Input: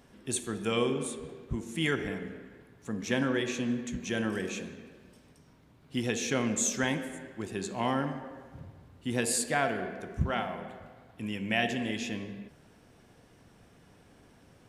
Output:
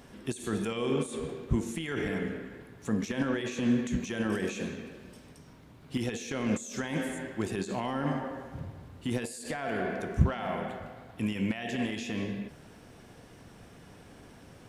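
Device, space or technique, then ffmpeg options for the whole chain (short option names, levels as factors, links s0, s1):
de-esser from a sidechain: -filter_complex "[0:a]asplit=2[s0][s1];[s1]highpass=f=4100:p=1,apad=whole_len=647775[s2];[s0][s2]sidechaincompress=threshold=0.00501:ratio=16:attack=0.93:release=42,volume=2.11"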